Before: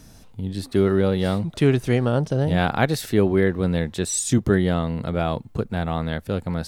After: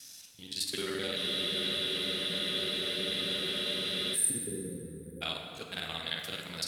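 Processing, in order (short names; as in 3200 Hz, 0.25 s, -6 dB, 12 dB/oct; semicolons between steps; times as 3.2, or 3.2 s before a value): local time reversal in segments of 43 ms; weighting filter D; spectral delete 4.04–5.22, 530–8500 Hz; pre-emphasis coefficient 0.9; plate-style reverb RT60 2.7 s, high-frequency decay 0.55×, DRR 2 dB; spectral freeze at 1.18, 2.96 s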